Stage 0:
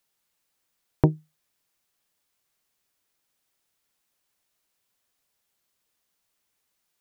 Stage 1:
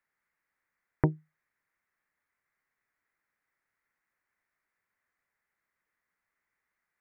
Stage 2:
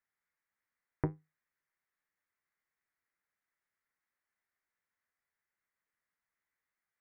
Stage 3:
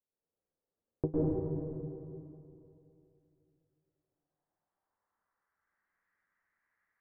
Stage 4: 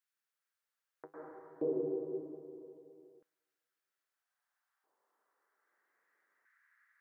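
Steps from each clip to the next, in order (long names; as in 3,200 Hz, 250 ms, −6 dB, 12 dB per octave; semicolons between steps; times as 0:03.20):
drawn EQ curve 710 Hz 0 dB, 2,000 Hz +12 dB, 3,000 Hz −12 dB; level −6 dB
flanger 0.88 Hz, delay 9.8 ms, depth 3.9 ms, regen +69%; level −3 dB
low-pass filter sweep 490 Hz → 1,800 Hz, 0:03.65–0:05.85; high-frequency loss of the air 230 metres; convolution reverb RT60 2.8 s, pre-delay 100 ms, DRR −8 dB; level −2.5 dB
auto-filter high-pass square 0.31 Hz 390–1,500 Hz; level +3.5 dB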